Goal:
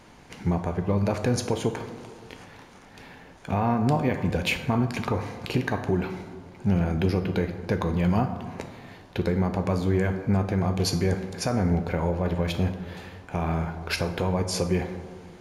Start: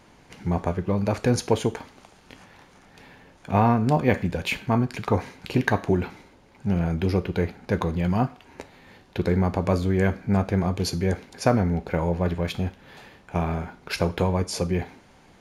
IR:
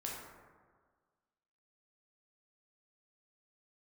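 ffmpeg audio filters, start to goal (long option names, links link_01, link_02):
-filter_complex "[0:a]alimiter=limit=-16.5dB:level=0:latency=1:release=257,asplit=2[link_01][link_02];[1:a]atrim=start_sample=2205,asetrate=34398,aresample=44100[link_03];[link_02][link_03]afir=irnorm=-1:irlink=0,volume=-6.5dB[link_04];[link_01][link_04]amix=inputs=2:normalize=0"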